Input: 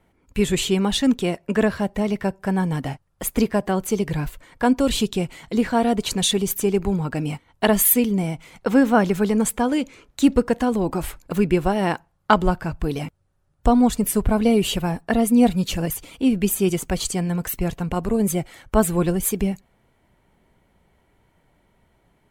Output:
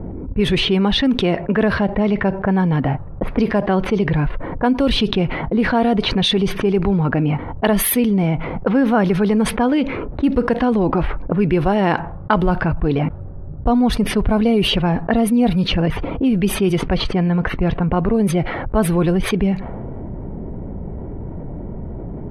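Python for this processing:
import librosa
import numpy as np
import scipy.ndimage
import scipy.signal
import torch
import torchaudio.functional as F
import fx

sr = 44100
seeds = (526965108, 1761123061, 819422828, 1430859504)

y = fx.env_lowpass(x, sr, base_hz=410.0, full_db=-14.5)
y = np.convolve(y, np.full(6, 1.0 / 6))[:len(y)]
y = fx.env_flatten(y, sr, amount_pct=70)
y = y * 10.0 ** (-2.0 / 20.0)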